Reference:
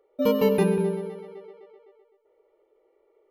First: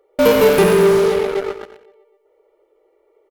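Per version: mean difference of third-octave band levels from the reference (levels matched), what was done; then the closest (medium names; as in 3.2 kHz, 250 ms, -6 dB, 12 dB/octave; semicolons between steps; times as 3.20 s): 9.0 dB: peaking EQ 200 Hz -9.5 dB 0.47 oct; in parallel at -9 dB: fuzz box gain 43 dB, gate -45 dBFS; on the sum: feedback delay 89 ms, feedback 31%, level -11 dB; trim +6 dB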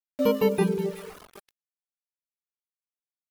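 6.0 dB: feedback echo behind a high-pass 372 ms, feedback 33%, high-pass 2 kHz, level -12.5 dB; small samples zeroed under -37 dBFS; reverb removal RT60 0.82 s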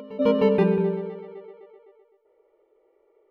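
2.0 dB: low-pass 3.1 kHz 12 dB/octave; reverse echo 309 ms -19 dB; trim +1.5 dB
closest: third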